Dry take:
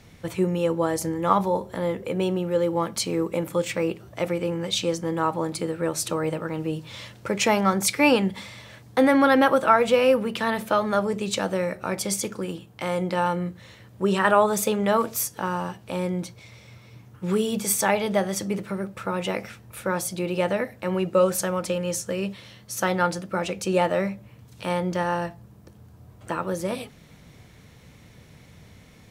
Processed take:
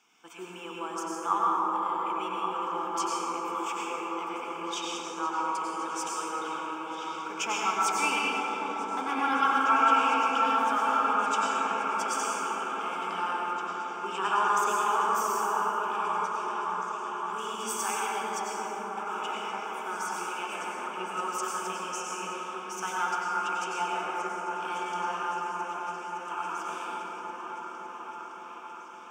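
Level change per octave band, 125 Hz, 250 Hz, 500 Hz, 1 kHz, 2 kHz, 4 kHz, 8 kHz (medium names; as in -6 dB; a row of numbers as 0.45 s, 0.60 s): under -20 dB, -13.5 dB, -13.5 dB, +1.0 dB, -3.0 dB, -5.0 dB, -6.5 dB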